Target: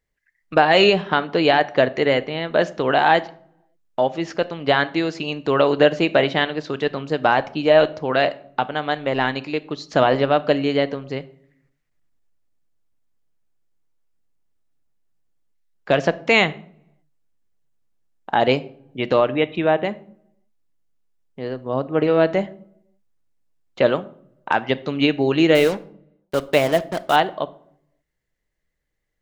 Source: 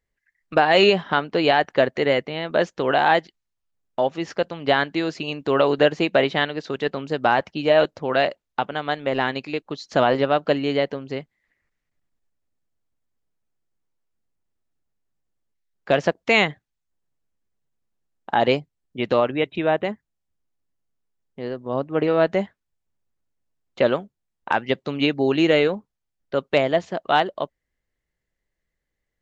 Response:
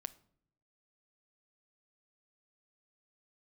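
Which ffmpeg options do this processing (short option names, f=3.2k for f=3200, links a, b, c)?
-filter_complex "[0:a]asettb=1/sr,asplit=3[a][b][c];[a]atrim=end=25.554[d];[b]atrim=start=25.55:end=27.16,asetpts=PTS-STARTPTS,afade=t=in:d=0.004:c=qsin,afade=t=out:st=1.606:d=0.004:c=qsin,acrusher=bits=4:mix=0:aa=0.5[e];[c]atrim=start=27.156[f];[d][e]acrossfade=d=0.004:c1=hsin:c2=qsin[g];[g][f]acrossfade=d=0.004:c1=qsin:c2=hsin[h];[1:a]atrim=start_sample=2205[i];[h][i]afir=irnorm=-1:irlink=0,volume=5dB"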